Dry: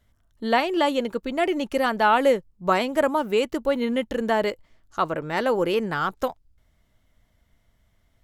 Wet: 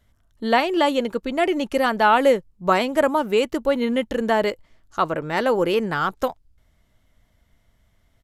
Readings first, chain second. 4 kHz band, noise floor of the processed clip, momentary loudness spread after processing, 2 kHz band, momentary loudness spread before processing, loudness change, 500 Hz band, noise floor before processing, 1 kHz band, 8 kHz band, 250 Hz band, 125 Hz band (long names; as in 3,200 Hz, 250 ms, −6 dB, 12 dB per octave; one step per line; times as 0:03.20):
+2.5 dB, −63 dBFS, 8 LU, +2.5 dB, 8 LU, +2.5 dB, +2.5 dB, −66 dBFS, +2.5 dB, +2.5 dB, +2.5 dB, +2.5 dB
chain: downsampling to 32,000 Hz
level +2.5 dB